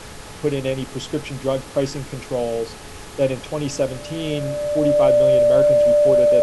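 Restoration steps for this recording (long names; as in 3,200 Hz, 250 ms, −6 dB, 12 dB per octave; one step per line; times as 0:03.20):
hum removal 424.6 Hz, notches 4
notch filter 590 Hz, Q 30
noise reduction from a noise print 26 dB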